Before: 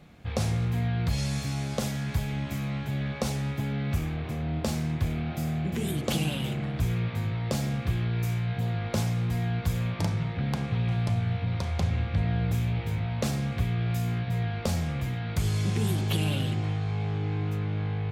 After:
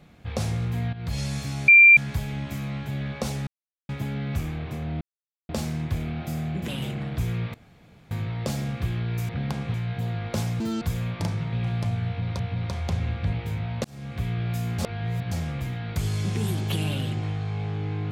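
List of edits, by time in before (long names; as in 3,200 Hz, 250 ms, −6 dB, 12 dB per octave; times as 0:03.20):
0:00.93–0:01.18: fade in, from −13.5 dB
0:01.68–0:01.97: beep over 2,370 Hz −8.5 dBFS
0:03.47: splice in silence 0.42 s
0:04.59: splice in silence 0.48 s
0:05.78–0:06.30: remove
0:07.16: splice in room tone 0.57 s
0:09.20–0:09.61: play speed 191%
0:10.32–0:10.77: move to 0:08.34
0:11.30–0:11.64: repeat, 2 plays
0:12.24–0:12.74: remove
0:13.25–0:13.69: fade in
0:14.19–0:14.72: reverse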